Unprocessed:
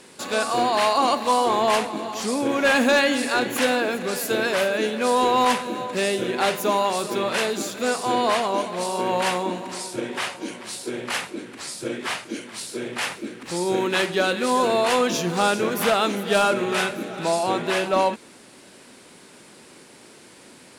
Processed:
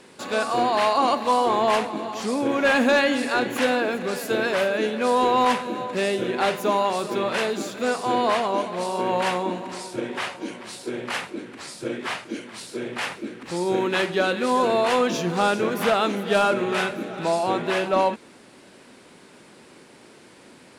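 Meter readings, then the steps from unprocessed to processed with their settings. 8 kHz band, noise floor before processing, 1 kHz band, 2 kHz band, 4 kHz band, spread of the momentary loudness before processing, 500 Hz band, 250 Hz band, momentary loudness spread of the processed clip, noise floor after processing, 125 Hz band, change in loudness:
-6.5 dB, -48 dBFS, -0.5 dB, -1.0 dB, -3.0 dB, 11 LU, 0.0 dB, 0.0 dB, 12 LU, -50 dBFS, 0.0 dB, -0.5 dB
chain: peaking EQ 15 kHz -8.5 dB 1.9 oct

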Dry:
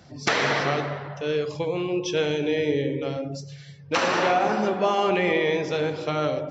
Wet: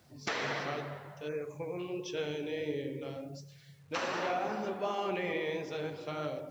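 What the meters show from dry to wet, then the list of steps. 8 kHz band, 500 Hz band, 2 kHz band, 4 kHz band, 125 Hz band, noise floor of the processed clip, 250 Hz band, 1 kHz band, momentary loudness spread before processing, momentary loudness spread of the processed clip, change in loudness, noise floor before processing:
no reading, -12.0 dB, -12.0 dB, -12.5 dB, -12.5 dB, -57 dBFS, -12.0 dB, -12.0 dB, 9 LU, 9 LU, -12.0 dB, -44 dBFS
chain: flange 1.4 Hz, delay 2.5 ms, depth 9.6 ms, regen -57%; spectral selection erased 1.28–1.79 s, 2.6–5.8 kHz; word length cut 10-bit, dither none; trim -8 dB

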